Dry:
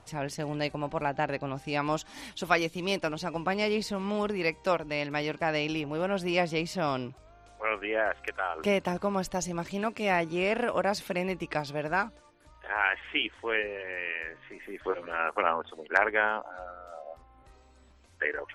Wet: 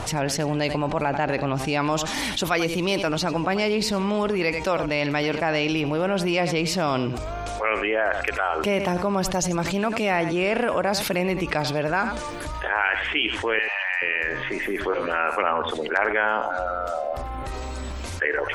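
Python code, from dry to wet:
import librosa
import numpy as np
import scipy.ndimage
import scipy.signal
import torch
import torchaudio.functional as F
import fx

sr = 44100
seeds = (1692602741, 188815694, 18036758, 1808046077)

y = fx.steep_highpass(x, sr, hz=680.0, slope=72, at=(13.59, 14.02))
y = y + 10.0 ** (-16.5 / 20.0) * np.pad(y, (int(90 * sr / 1000.0), 0))[:len(y)]
y = fx.env_flatten(y, sr, amount_pct=70)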